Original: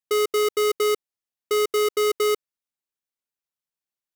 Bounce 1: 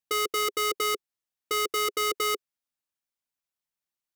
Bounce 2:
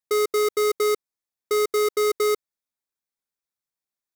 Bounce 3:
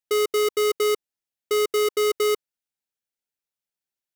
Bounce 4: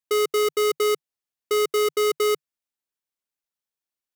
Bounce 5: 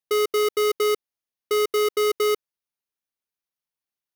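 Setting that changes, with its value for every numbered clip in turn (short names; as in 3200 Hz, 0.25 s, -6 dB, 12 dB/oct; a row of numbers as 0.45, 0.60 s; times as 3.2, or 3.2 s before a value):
notch, frequency: 410, 2900, 1100, 150, 7600 Hz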